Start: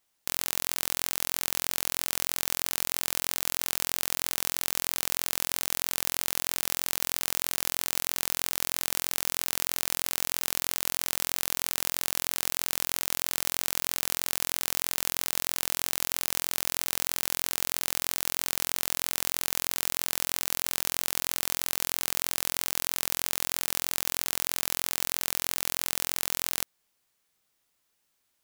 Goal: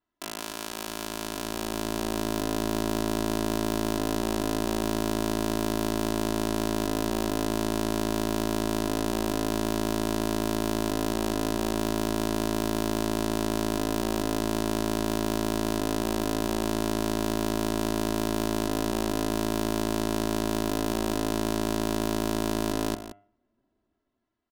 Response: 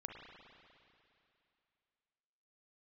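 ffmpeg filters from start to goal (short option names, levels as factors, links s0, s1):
-filter_complex "[0:a]equalizer=f=150:t=o:w=1.1:g=10.5,bandreject=f=1900:w=10,aecho=1:1:3.8:0.9,bandreject=f=79.94:t=h:w=4,bandreject=f=159.88:t=h:w=4,bandreject=f=239.82:t=h:w=4,bandreject=f=319.76:t=h:w=4,bandreject=f=399.7:t=h:w=4,bandreject=f=479.64:t=h:w=4,bandreject=f=559.58:t=h:w=4,bandreject=f=639.52:t=h:w=4,bandreject=f=719.46:t=h:w=4,bandreject=f=799.4:t=h:w=4,bandreject=f=879.34:t=h:w=4,bandreject=f=959.28:t=h:w=4,bandreject=f=1039.22:t=h:w=4,bandreject=f=1119.16:t=h:w=4,bandreject=f=1199.1:t=h:w=4,bandreject=f=1279.04:t=h:w=4,bandreject=f=1358.98:t=h:w=4,bandreject=f=1438.92:t=h:w=4,bandreject=f=1518.86:t=h:w=4,bandreject=f=1598.8:t=h:w=4,bandreject=f=1678.74:t=h:w=4,bandreject=f=1758.68:t=h:w=4,bandreject=f=1838.62:t=h:w=4,bandreject=f=1918.56:t=h:w=4,bandreject=f=1998.5:t=h:w=4,bandreject=f=2078.44:t=h:w=4,bandreject=f=2158.38:t=h:w=4,bandreject=f=2238.32:t=h:w=4,bandreject=f=2318.26:t=h:w=4,bandreject=f=2398.2:t=h:w=4,bandreject=f=2478.14:t=h:w=4,bandreject=f=2558.08:t=h:w=4,bandreject=f=2638.02:t=h:w=4,acrossover=split=600[s0][s1];[s0]dynaudnorm=f=800:g=5:m=5.96[s2];[s2][s1]amix=inputs=2:normalize=0,asetrate=51156,aresample=44100,adynamicsmooth=sensitivity=2.5:basefreq=1800,asetrate=48091,aresample=44100,atempo=0.917004,asplit=2[s3][s4];[s4]aecho=0:1:175:0.251[s5];[s3][s5]amix=inputs=2:normalize=0,volume=0.794"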